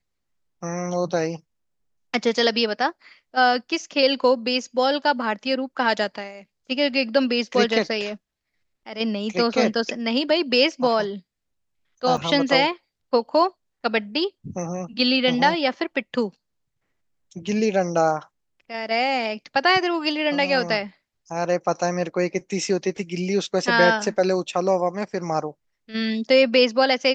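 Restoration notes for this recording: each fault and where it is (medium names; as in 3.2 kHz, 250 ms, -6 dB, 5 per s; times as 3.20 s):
12.17 s: dropout 3.7 ms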